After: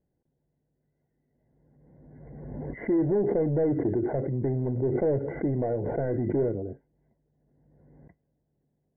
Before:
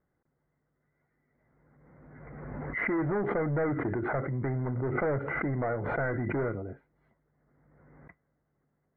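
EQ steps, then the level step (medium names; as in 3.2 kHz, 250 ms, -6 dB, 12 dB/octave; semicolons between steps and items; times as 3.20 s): dynamic bell 410 Hz, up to +6 dB, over -43 dBFS, Q 1.1; boxcar filter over 35 samples; +2.0 dB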